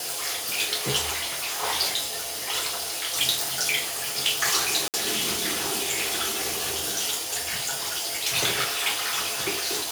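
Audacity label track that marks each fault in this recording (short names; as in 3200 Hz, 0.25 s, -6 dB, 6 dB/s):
1.120000	1.650000	clipped -25.5 dBFS
4.880000	4.940000	gap 58 ms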